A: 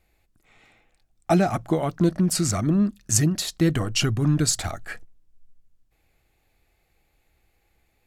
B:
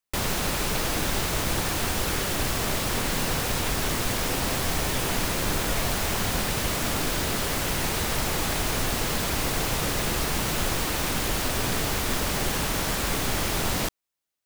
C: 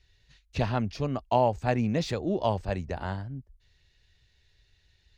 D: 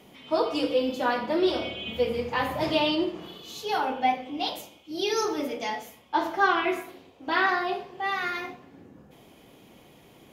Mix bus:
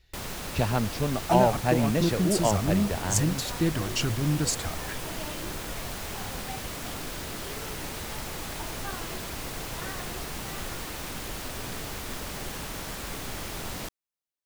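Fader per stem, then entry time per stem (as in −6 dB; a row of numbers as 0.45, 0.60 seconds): −5.5, −9.5, +1.5, −18.5 decibels; 0.00, 0.00, 0.00, 2.45 seconds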